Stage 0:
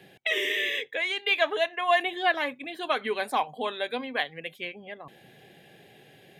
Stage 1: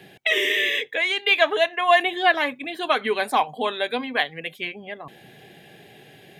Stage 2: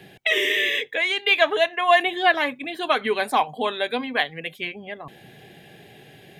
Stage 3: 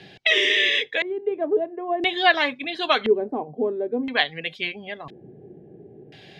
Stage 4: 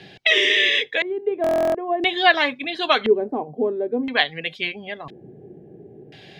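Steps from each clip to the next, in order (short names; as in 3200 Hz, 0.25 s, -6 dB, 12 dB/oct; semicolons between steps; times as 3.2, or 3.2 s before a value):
notch 530 Hz, Q 12; gain +6 dB
low shelf 87 Hz +9 dB
LFO low-pass square 0.49 Hz 380–4800 Hz
stuck buffer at 1.42, samples 1024, times 13; gain +2 dB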